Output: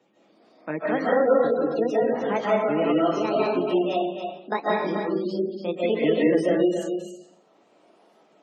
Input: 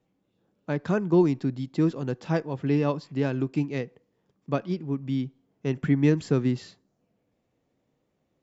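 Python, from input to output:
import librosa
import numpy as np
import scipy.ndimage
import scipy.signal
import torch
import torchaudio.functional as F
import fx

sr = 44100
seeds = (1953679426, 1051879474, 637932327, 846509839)

p1 = fx.pitch_ramps(x, sr, semitones=9.0, every_ms=671)
p2 = scipy.signal.sosfilt(scipy.signal.butter(2, 300.0, 'highpass', fs=sr, output='sos'), p1)
p3 = p2 + fx.echo_single(p2, sr, ms=277, db=-9.0, dry=0)
p4 = fx.rev_freeverb(p3, sr, rt60_s=0.67, hf_ratio=0.95, predelay_ms=110, drr_db=-6.0)
p5 = fx.spec_gate(p4, sr, threshold_db=-30, keep='strong')
y = fx.band_squash(p5, sr, depth_pct=40)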